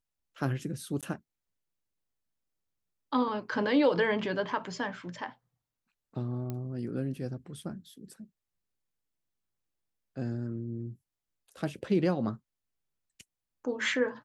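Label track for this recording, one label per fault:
1.010000	1.030000	dropout 17 ms
6.500000	6.500000	pop -23 dBFS

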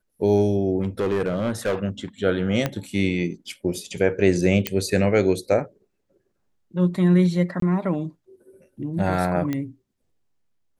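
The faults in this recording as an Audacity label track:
0.830000	1.750000	clipped -18.5 dBFS
2.660000	2.660000	pop -9 dBFS
4.670000	4.670000	pop -6 dBFS
7.600000	7.620000	dropout 23 ms
9.530000	9.530000	pop -14 dBFS

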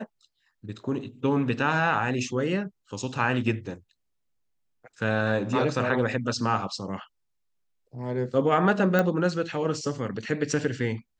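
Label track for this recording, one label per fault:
8.990000	8.990000	pop -11 dBFS

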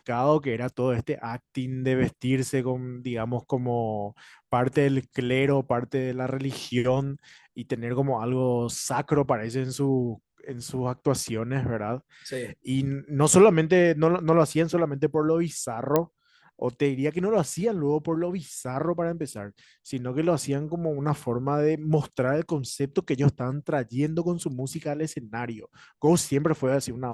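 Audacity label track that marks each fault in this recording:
15.960000	15.960000	pop -8 dBFS

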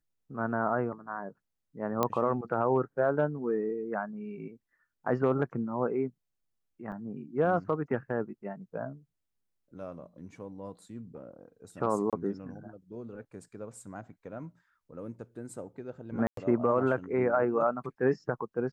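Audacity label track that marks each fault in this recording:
2.030000	2.030000	pop -13 dBFS
6.920000	6.920000	dropout 3 ms
12.100000	12.130000	dropout 27 ms
16.270000	16.370000	dropout 103 ms

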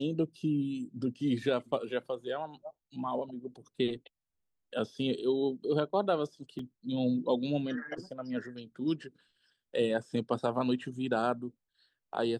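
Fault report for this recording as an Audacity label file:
6.590000	6.590000	dropout 2.8 ms

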